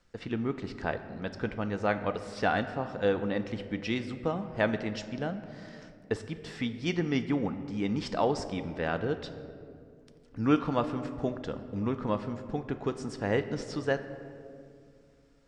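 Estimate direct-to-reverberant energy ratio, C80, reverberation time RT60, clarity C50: 9.0 dB, 12.5 dB, 2.3 s, 11.5 dB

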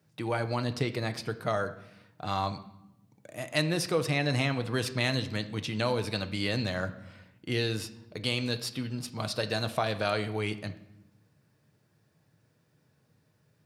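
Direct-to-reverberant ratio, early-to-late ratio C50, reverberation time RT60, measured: 8.0 dB, 14.0 dB, 0.90 s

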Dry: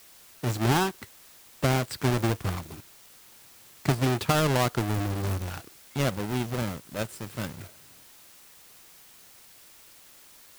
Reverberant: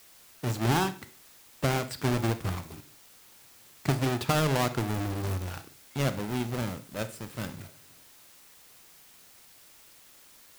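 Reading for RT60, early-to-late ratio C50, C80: 0.40 s, 14.0 dB, 20.0 dB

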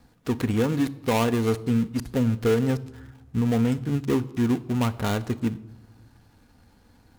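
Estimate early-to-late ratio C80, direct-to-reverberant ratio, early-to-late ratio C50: 21.0 dB, 11.5 dB, 18.5 dB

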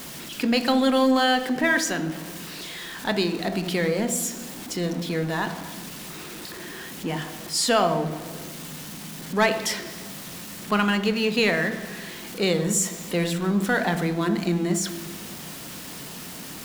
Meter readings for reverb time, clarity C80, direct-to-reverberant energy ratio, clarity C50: 1.1 s, 13.5 dB, 8.5 dB, 12.0 dB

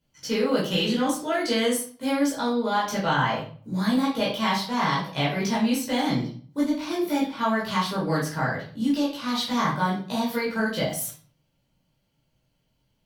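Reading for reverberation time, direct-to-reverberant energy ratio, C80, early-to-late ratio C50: 0.45 s, −7.0 dB, 10.5 dB, 5.0 dB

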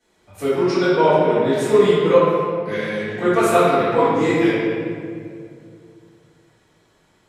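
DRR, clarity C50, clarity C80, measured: −15.0 dB, −4.0 dB, −1.0 dB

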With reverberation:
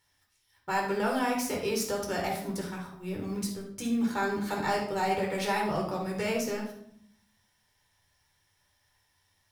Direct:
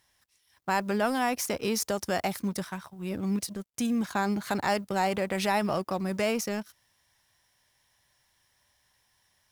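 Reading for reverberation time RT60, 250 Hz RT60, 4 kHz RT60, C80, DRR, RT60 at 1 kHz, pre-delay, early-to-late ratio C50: 0.65 s, 1.1 s, 0.50 s, 9.0 dB, −1.5 dB, 0.60 s, 10 ms, 4.0 dB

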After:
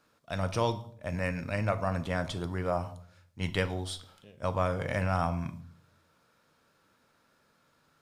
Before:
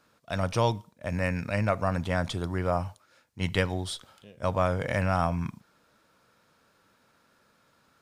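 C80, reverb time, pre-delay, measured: 19.5 dB, 0.55 s, 7 ms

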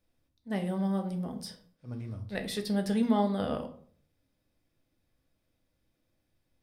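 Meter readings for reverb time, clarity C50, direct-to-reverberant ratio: 0.55 s, 12.0 dB, 5.0 dB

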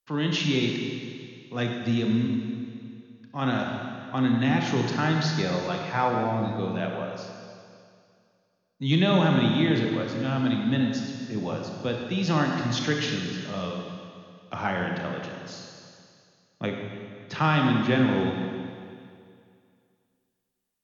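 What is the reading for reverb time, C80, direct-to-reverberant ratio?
2.3 s, 3.5 dB, 1.0 dB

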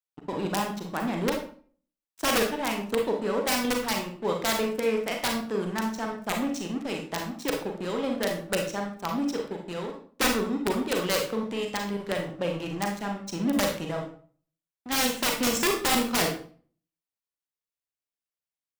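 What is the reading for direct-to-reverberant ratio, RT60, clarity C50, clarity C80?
1.5 dB, 0.45 s, 6.0 dB, 10.5 dB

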